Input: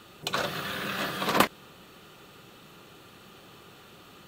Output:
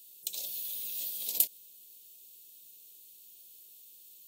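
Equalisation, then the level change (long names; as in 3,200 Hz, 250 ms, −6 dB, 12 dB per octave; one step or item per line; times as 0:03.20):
Butterworth band-reject 1,400 Hz, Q 0.57
first-order pre-emphasis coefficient 0.8
RIAA equalisation recording
−8.0 dB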